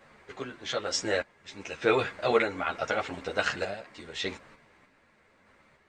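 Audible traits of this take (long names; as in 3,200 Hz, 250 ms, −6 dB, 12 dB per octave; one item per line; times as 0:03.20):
sample-and-hold tremolo 3.3 Hz, depth 80%
a shimmering, thickened sound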